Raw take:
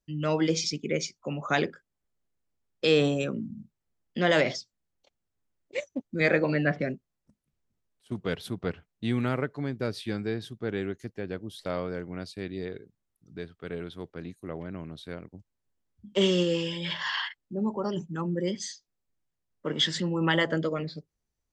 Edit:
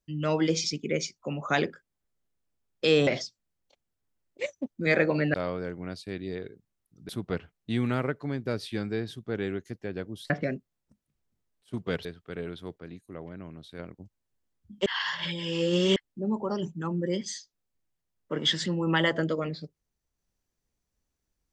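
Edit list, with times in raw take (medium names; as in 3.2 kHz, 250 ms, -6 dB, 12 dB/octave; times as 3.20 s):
3.07–4.41 s: delete
6.68–8.43 s: swap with 11.64–13.39 s
14.12–15.13 s: gain -4 dB
16.20–17.30 s: reverse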